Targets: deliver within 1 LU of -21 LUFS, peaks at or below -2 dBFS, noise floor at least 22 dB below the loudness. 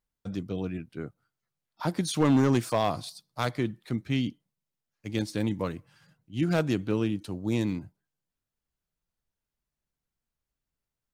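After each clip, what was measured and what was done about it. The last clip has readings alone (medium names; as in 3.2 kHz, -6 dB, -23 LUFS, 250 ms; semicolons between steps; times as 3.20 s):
clipped samples 0.3%; clipping level -16.0 dBFS; loudness -29.5 LUFS; peak level -16.0 dBFS; loudness target -21.0 LUFS
-> clip repair -16 dBFS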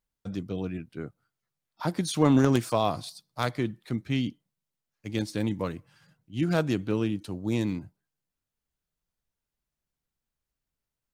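clipped samples 0.0%; loudness -29.0 LUFS; peak level -7.0 dBFS; loudness target -21.0 LUFS
-> trim +8 dB; peak limiter -2 dBFS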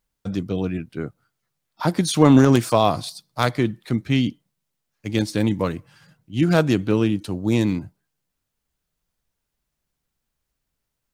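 loudness -21.0 LUFS; peak level -2.0 dBFS; noise floor -80 dBFS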